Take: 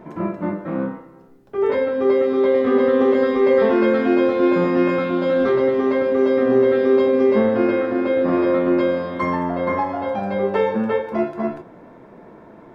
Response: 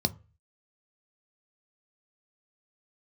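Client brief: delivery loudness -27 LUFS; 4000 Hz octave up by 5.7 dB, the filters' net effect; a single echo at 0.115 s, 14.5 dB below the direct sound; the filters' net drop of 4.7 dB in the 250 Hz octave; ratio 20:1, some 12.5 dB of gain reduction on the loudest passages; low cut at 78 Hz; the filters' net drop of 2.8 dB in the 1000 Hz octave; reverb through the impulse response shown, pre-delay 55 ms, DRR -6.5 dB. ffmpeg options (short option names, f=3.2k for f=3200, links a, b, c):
-filter_complex "[0:a]highpass=78,equalizer=f=250:t=o:g=-6,equalizer=f=1k:t=o:g=-3.5,equalizer=f=4k:t=o:g=7.5,acompressor=threshold=-27dB:ratio=20,aecho=1:1:115:0.188,asplit=2[a][b];[1:a]atrim=start_sample=2205,adelay=55[c];[b][c]afir=irnorm=-1:irlink=0,volume=-0.5dB[d];[a][d]amix=inputs=2:normalize=0,volume=-6dB"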